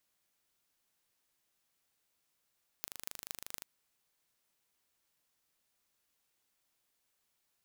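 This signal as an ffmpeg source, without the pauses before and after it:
-f lavfi -i "aevalsrc='0.299*eq(mod(n,1723),0)*(0.5+0.5*eq(mod(n,10338),0))':d=0.81:s=44100"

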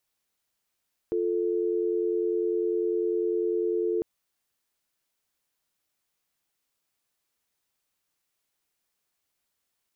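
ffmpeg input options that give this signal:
-f lavfi -i "aevalsrc='0.0473*(sin(2*PI*350*t)+sin(2*PI*440*t))':d=2.9:s=44100"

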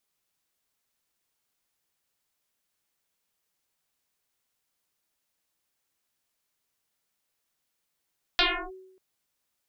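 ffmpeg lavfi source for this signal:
-f lavfi -i "aevalsrc='0.141*pow(10,-3*t/0.85)*sin(2*PI*376*t+12*clip(1-t/0.32,0,1)*sin(2*PI*0.94*376*t))':d=0.59:s=44100"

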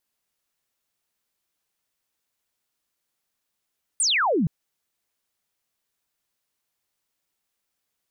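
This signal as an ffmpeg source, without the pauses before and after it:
-f lavfi -i "aevalsrc='0.119*clip(t/0.002,0,1)*clip((0.47-t)/0.002,0,1)*sin(2*PI*9600*0.47/log(140/9600)*(exp(log(140/9600)*t/0.47)-1))':d=0.47:s=44100"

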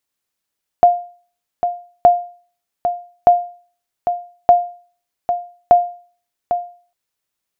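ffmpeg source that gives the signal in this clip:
-f lavfi -i "aevalsrc='0.841*(sin(2*PI*704*mod(t,1.22))*exp(-6.91*mod(t,1.22)/0.42)+0.355*sin(2*PI*704*max(mod(t,1.22)-0.8,0))*exp(-6.91*max(mod(t,1.22)-0.8,0)/0.42))':d=6.1:s=44100"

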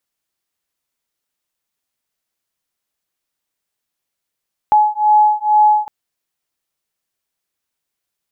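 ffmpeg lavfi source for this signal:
-f lavfi -i "aevalsrc='0.237*(sin(2*PI*846*t)+sin(2*PI*848.2*t))':d=1.16:s=44100"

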